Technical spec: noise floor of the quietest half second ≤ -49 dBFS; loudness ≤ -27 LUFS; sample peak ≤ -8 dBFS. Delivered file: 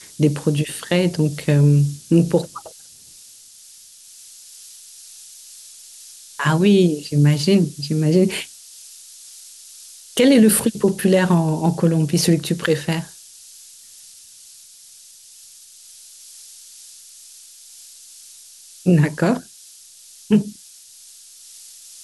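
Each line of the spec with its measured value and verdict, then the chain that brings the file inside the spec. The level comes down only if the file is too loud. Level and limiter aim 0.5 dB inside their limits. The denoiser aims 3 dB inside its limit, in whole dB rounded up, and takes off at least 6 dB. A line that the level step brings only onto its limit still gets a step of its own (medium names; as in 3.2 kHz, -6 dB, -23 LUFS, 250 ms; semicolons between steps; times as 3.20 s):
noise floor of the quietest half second -45 dBFS: fail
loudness -18.0 LUFS: fail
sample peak -5.0 dBFS: fail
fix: trim -9.5 dB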